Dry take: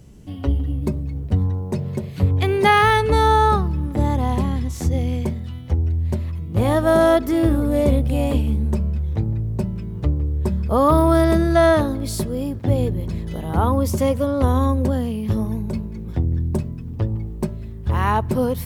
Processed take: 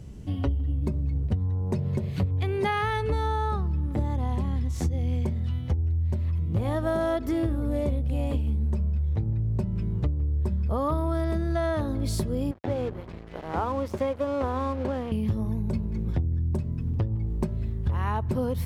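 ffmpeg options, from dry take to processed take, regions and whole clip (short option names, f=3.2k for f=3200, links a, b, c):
-filter_complex "[0:a]asettb=1/sr,asplit=3[a][b][c];[a]atrim=end=12.514[d];[b]atrim=start=12.51:end=15.12,asetpts=PTS-STARTPTS,afade=t=in:d=0.004:c=qsin,afade=t=out:st=2.606:d=0.004:c=qsin,bass=f=250:g=-15,treble=f=4k:g=-15,aeval=exprs='sgn(val(0))*max(abs(val(0))-0.0106,0)':c=same[e];[c]atrim=start=15.116[f];[d][e]acrossfade=d=0.004:c1=hsin:c2=qsin[g];[g][f]acrossfade=d=0.004:c1=qsin:c2=hsin,equalizer=f=75:w=0.9:g=6,acompressor=threshold=-23dB:ratio=10,highshelf=f=8.7k:g=-8"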